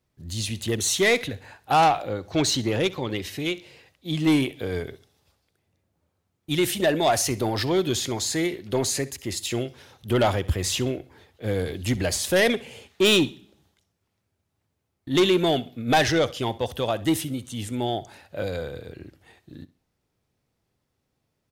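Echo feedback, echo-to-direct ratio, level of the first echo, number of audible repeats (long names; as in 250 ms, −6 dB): 30%, −18.5 dB, −19.0 dB, 2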